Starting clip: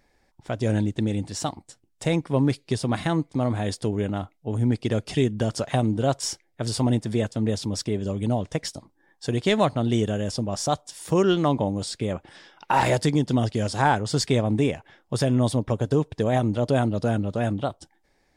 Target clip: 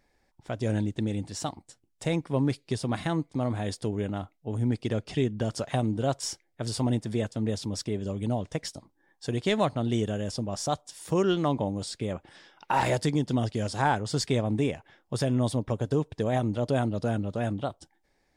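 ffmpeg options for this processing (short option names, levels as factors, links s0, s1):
-filter_complex "[0:a]asettb=1/sr,asplit=3[s0][s1][s2];[s0]atrim=end=4.924[s3];[s1]atrim=start=4.92:end=5.45,asetpts=PTS-STARTPTS,afade=t=in:d=0.004:c=qsin,afade=t=out:st=0.526:d=0.004:c=qsin,highshelf=f=9000:g=-12[s4];[s2]atrim=start=5.446[s5];[s3][s4]acrossfade=d=0.004:c1=hsin:c2=qsin[s6];[s6][s5]acrossfade=d=0.004:c1=qsin:c2=hsin,volume=0.596"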